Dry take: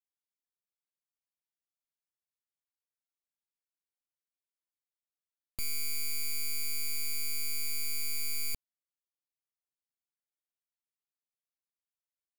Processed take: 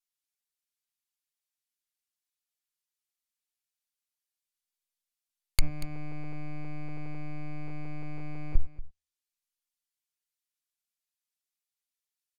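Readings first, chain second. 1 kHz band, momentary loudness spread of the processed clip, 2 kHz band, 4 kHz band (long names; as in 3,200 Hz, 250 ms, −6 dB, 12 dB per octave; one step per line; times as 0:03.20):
+12.5 dB, 7 LU, −5.5 dB, −7.5 dB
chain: lower of the sound and its delayed copy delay 5.6 ms
guitar amp tone stack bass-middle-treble 10-0-10
hum removal 76.08 Hz, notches 29
leveller curve on the samples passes 5
parametric band 200 Hz −12 dB 2.3 octaves
treble cut that deepens with the level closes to 390 Hz
single-tap delay 236 ms −16 dB
level +17.5 dB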